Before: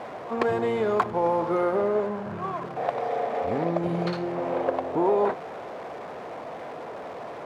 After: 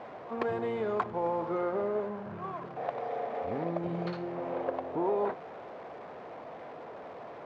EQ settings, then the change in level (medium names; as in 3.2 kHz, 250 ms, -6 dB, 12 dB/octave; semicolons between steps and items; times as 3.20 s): distance through air 110 m; -7.0 dB